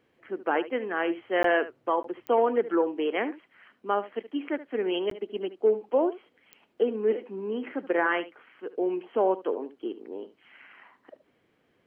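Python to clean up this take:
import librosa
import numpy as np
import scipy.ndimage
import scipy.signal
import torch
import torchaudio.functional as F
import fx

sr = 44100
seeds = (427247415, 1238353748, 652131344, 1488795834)

y = fx.fix_declick_ar(x, sr, threshold=10.0)
y = fx.fix_interpolate(y, sr, at_s=(1.43, 2.03, 5.1), length_ms=13.0)
y = fx.fix_echo_inverse(y, sr, delay_ms=74, level_db=-15.5)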